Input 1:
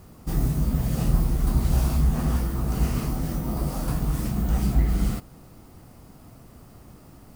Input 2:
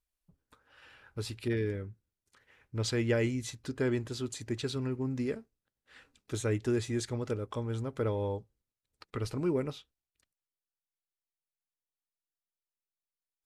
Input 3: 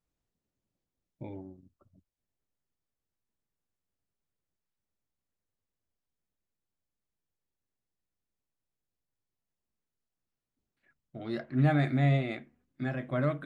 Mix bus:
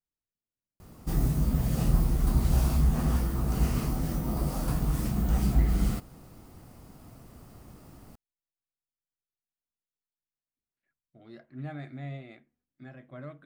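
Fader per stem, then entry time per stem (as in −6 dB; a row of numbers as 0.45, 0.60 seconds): −2.5 dB, muted, −13.5 dB; 0.80 s, muted, 0.00 s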